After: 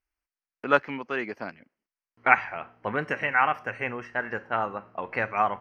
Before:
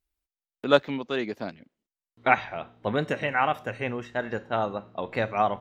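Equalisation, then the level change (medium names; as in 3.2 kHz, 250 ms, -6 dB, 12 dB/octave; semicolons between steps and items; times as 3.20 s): dynamic bell 630 Hz, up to -5 dB, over -37 dBFS, Q 3; boxcar filter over 12 samples; tilt shelf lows -9 dB, about 890 Hz; +3.0 dB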